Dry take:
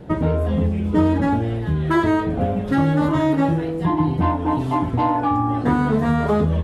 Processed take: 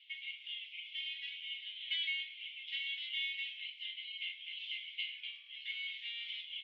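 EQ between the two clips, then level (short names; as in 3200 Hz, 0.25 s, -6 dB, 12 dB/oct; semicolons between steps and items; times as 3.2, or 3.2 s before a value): rippled Chebyshev high-pass 2100 Hz, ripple 9 dB; synth low-pass 3400 Hz, resonance Q 3.8; air absorption 310 m; +5.0 dB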